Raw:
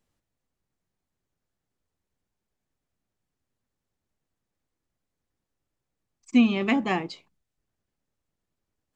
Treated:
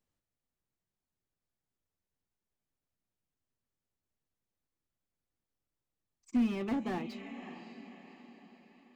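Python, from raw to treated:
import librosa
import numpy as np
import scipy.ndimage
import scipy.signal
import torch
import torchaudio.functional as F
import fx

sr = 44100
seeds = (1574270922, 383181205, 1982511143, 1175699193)

y = fx.echo_diffused(x, sr, ms=581, feedback_pct=47, wet_db=-13.5)
y = fx.slew_limit(y, sr, full_power_hz=41.0)
y = y * librosa.db_to_amplitude(-8.5)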